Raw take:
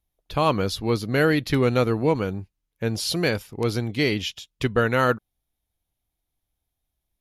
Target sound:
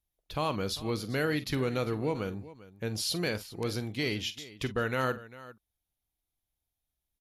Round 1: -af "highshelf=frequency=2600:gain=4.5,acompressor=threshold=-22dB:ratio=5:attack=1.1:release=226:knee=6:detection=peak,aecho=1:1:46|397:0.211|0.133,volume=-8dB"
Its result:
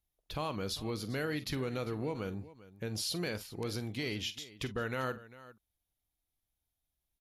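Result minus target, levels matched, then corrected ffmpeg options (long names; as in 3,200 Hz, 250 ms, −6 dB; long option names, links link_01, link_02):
downward compressor: peak gain reduction +6.5 dB
-af "highshelf=frequency=2600:gain=4.5,acompressor=threshold=-13.5dB:ratio=5:attack=1.1:release=226:knee=6:detection=peak,aecho=1:1:46|397:0.211|0.133,volume=-8dB"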